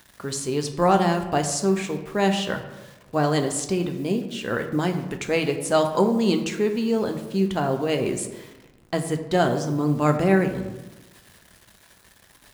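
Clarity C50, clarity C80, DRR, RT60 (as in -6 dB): 9.0 dB, 11.0 dB, 5.0 dB, 1.1 s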